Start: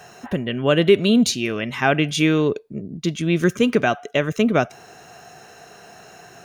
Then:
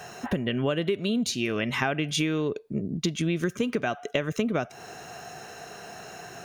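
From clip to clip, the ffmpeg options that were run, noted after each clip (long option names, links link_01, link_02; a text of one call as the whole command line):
ffmpeg -i in.wav -af "acompressor=threshold=-25dB:ratio=10,volume=2dB" out.wav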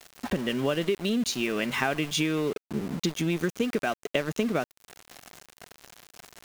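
ffmpeg -i in.wav -af "equalizer=frequency=110:width=4.1:gain=-14.5,aeval=exprs='val(0)*gte(abs(val(0)),0.0178)':channel_layout=same" out.wav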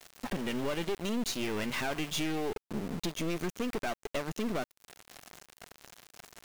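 ffmpeg -i in.wav -af "aeval=exprs='(tanh(28.2*val(0)+0.65)-tanh(0.65))/28.2':channel_layout=same" out.wav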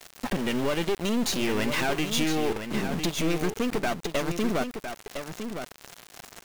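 ffmpeg -i in.wav -af "aecho=1:1:1008:0.398,volume=6.5dB" out.wav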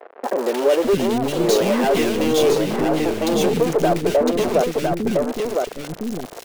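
ffmpeg -i in.wav -filter_complex "[0:a]aeval=exprs='0.168*(cos(1*acos(clip(val(0)/0.168,-1,1)))-cos(1*PI/2))+0.0473*(cos(5*acos(clip(val(0)/0.168,-1,1)))-cos(5*PI/2))':channel_layout=same,equalizer=frequency=480:width_type=o:width=1.5:gain=13.5,acrossover=split=320|1800[link_01][link_02][link_03];[link_03]adelay=230[link_04];[link_01]adelay=610[link_05];[link_05][link_02][link_04]amix=inputs=3:normalize=0" out.wav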